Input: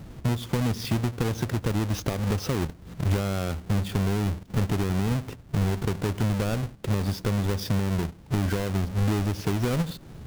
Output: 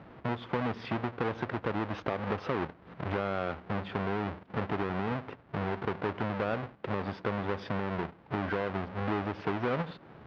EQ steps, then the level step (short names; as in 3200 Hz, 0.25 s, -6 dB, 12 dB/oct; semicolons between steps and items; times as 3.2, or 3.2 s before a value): band-pass 1200 Hz, Q 0.6; air absorption 300 m; +3.5 dB